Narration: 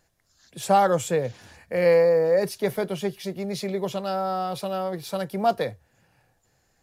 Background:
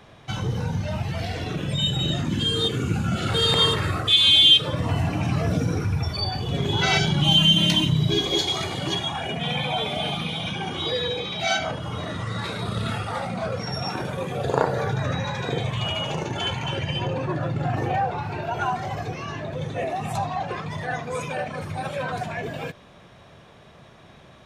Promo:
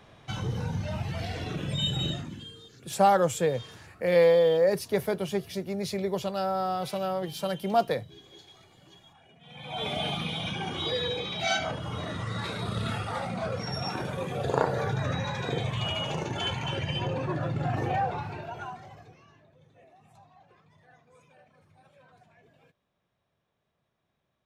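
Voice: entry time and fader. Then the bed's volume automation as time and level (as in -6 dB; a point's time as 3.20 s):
2.30 s, -2.0 dB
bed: 2.06 s -5 dB
2.67 s -29 dB
9.40 s -29 dB
9.86 s -4 dB
18.14 s -4 dB
19.54 s -30 dB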